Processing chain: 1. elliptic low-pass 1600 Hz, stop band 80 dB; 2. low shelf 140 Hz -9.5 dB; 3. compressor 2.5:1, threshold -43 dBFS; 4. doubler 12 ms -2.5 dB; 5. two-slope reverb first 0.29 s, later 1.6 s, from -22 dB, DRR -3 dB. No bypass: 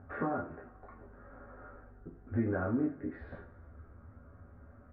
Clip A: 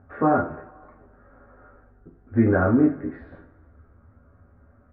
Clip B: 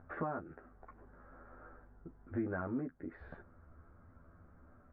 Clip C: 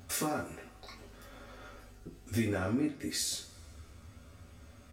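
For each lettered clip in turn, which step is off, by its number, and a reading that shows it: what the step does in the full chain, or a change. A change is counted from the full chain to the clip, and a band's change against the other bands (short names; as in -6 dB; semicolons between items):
3, mean gain reduction 4.0 dB; 5, loudness change -6.0 LU; 1, 2 kHz band +2.0 dB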